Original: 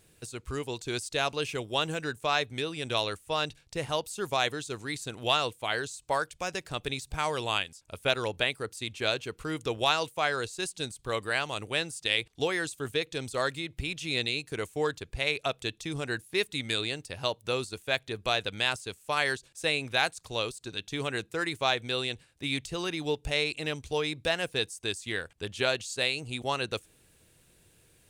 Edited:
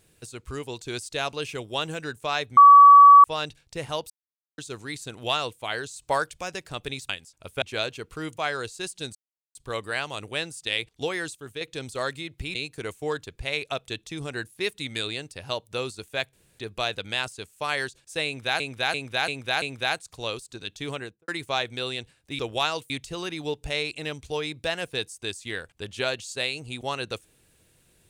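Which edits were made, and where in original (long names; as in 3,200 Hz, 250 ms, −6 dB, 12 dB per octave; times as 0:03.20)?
0:02.57–0:03.24: beep over 1,140 Hz −7 dBFS
0:04.10–0:04.58: silence
0:05.96–0:06.41: clip gain +4 dB
0:07.09–0:07.57: remove
0:08.10–0:08.90: remove
0:09.65–0:10.16: move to 0:22.51
0:10.94: splice in silence 0.40 s
0:12.74–0:13.00: clip gain −6 dB
0:13.94–0:14.29: remove
0:18.07: splice in room tone 0.26 s
0:19.74–0:20.08: repeat, 5 plays
0:21.02–0:21.40: fade out and dull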